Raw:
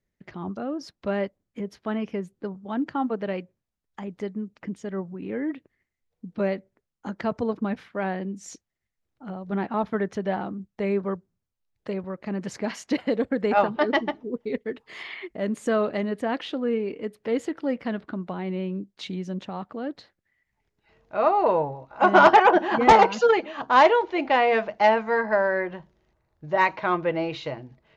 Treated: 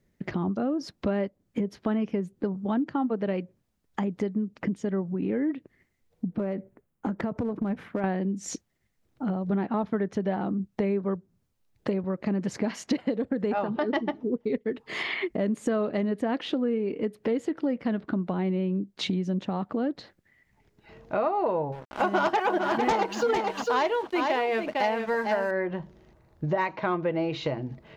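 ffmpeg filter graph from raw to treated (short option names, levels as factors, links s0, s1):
-filter_complex "[0:a]asettb=1/sr,asplit=3[s0][s1][s2];[s0]atrim=end=6.274[s3];[s1]atrim=start=6.27:end=8.04,asetpts=PTS-STARTPTS,afade=t=in:d=0.004:c=qsin,afade=t=out:st=1.766:d=0.004:c=qsin,equalizer=f=4800:w=0.78:g=-11.5,acompressor=threshold=0.0224:ratio=4:attack=3.2:release=140:knee=1:detection=peak,aeval=exprs='clip(val(0),-1,0.0224)':c=same[s4];[s2]atrim=start=8.036[s5];[s3][s4]acrossfade=d=0.004:c1=hsin:c2=qsin[s6];[s6][s5]acrossfade=d=0.004:c1=qsin:c2=hsin,asettb=1/sr,asplit=3[s7][s8][s9];[s7]atrim=end=13.114[s10];[s8]atrim=start=13.11:end=13.96,asetpts=PTS-STARTPTS,afade=t=in:d=0.004:c=qsin,afade=t=out:st=0.846:d=0.004:c=qsin,bandreject=f=2200:w=20,acompressor=threshold=0.0447:ratio=1.5:attack=3.2:release=140:knee=1:detection=peak[s11];[s9]atrim=start=13.956[s12];[s10][s11]acrossfade=d=0.004:c1=hsin:c2=qsin[s13];[s13][s12]acrossfade=d=0.004:c1=qsin:c2=hsin,asettb=1/sr,asplit=3[s14][s15][s16];[s14]atrim=end=21.724[s17];[s15]atrim=start=21.72:end=25.51,asetpts=PTS-STARTPTS,afade=t=in:d=0.004:c=qsin,afade=t=out:st=3.786:d=0.004:c=qsin,highshelf=f=3200:g=10.5,aeval=exprs='sgn(val(0))*max(abs(val(0))-0.00708,0)':c=same,aecho=1:1:452:0.398,atrim=end_sample=167139[s18];[s16]atrim=start=25.506[s19];[s17][s18]acrossfade=d=0.004:c1=hsin:c2=qsin[s20];[s20][s19]acrossfade=d=0.004:c1=qsin:c2=hsin,equalizer=f=210:t=o:w=2.9:g=6.5,acompressor=threshold=0.0178:ratio=4,volume=2.51"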